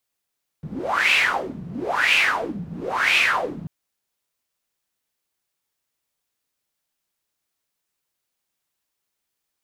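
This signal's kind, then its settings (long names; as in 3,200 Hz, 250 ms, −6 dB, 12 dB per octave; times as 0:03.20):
wind from filtered noise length 3.04 s, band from 160 Hz, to 2,600 Hz, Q 6.5, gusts 3, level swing 16 dB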